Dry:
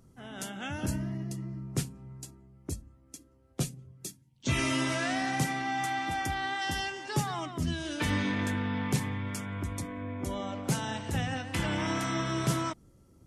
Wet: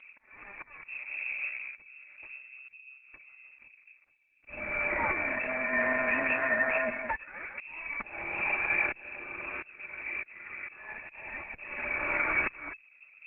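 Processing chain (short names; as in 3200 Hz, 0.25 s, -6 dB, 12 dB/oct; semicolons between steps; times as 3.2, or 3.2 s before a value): minimum comb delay 3.5 ms; bell 70 Hz +12 dB 0.27 oct; inverted band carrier 2600 Hz; 5.11–5.73 level quantiser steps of 19 dB; auto swell 0.742 s; gain +7 dB; Opus 8 kbps 48000 Hz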